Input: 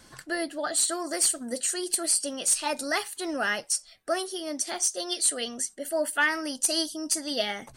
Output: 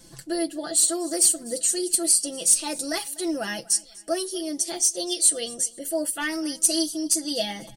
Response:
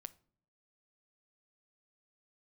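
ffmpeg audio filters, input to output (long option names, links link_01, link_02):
-af "aecho=1:1:6:0.75,acontrast=22,equalizer=frequency=1400:width_type=o:width=2.3:gain=-14,bandreject=frequency=60:width_type=h:width=6,bandreject=frequency=120:width_type=h:width=6,bandreject=frequency=180:width_type=h:width=6,aecho=1:1:247|494|741:0.075|0.0285|0.0108"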